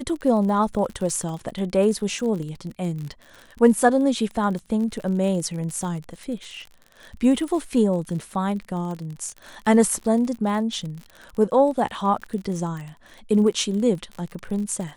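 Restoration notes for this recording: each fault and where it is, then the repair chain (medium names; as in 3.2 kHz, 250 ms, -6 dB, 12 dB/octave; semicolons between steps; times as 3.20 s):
crackle 45 per s -31 dBFS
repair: de-click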